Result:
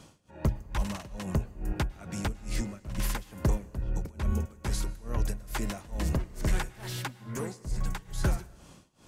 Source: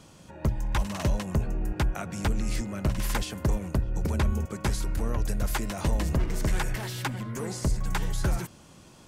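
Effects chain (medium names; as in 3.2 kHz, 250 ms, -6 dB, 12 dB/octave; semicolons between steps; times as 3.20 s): tremolo 2.3 Hz, depth 95%; on a send: reverberation, pre-delay 99 ms, DRR 21 dB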